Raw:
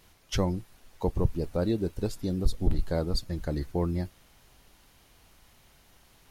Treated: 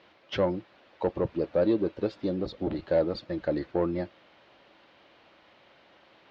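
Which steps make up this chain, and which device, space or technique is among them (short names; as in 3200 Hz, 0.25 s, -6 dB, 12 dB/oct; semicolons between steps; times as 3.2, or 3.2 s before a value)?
overdrive pedal into a guitar cabinet (overdrive pedal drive 19 dB, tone 2900 Hz, clips at -11 dBFS; speaker cabinet 83–4100 Hz, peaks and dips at 200 Hz +3 dB, 320 Hz +8 dB, 560 Hz +9 dB); gain -7 dB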